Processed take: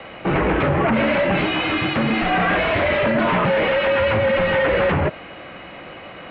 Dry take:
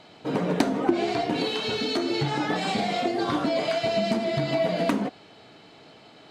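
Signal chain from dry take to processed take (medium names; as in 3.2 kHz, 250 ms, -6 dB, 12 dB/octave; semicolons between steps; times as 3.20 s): bass shelf 500 Hz -11.5 dB; sine folder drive 17 dB, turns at -11.5 dBFS; mistuned SSB -120 Hz 170–2800 Hz; trim -2.5 dB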